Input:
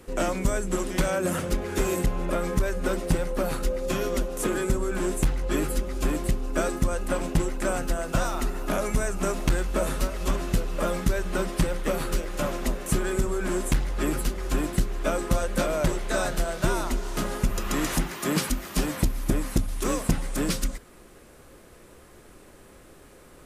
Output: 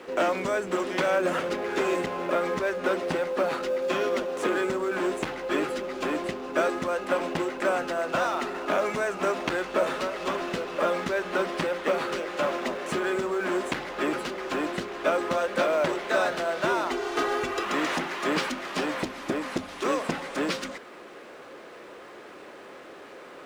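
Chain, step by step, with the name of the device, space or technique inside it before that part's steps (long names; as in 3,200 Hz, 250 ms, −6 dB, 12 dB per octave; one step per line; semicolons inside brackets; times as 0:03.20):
phone line with mismatched companding (band-pass filter 380–3,500 Hz; mu-law and A-law mismatch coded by mu)
0:16.91–0:17.65: comb filter 2.6 ms, depth 85%
level +3 dB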